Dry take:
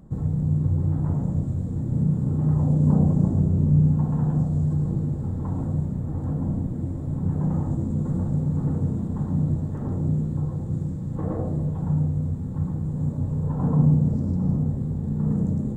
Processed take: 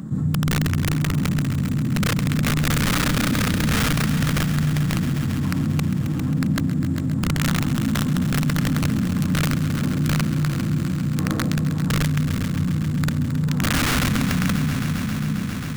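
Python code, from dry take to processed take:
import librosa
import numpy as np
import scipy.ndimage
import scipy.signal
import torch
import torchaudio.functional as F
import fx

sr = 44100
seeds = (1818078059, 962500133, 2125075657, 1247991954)

p1 = fx.fade_out_tail(x, sr, length_s=1.54)
p2 = scipy.signal.sosfilt(scipy.signal.butter(2, 160.0, 'highpass', fs=sr, output='sos'), p1)
p3 = fx.rider(p2, sr, range_db=3, speed_s=2.0)
p4 = p2 + (p3 * librosa.db_to_amplitude(-2.0))
p5 = (np.mod(10.0 ** (14.5 / 20.0) * p4 + 1.0, 2.0) - 1.0) / 10.0 ** (14.5 / 20.0)
p6 = fx.band_shelf(p5, sr, hz=590.0, db=-12.0, octaves=1.7)
p7 = p6 + fx.echo_heads(p6, sr, ms=134, heads='all three', feedback_pct=72, wet_db=-15.5, dry=0)
y = fx.env_flatten(p7, sr, amount_pct=50)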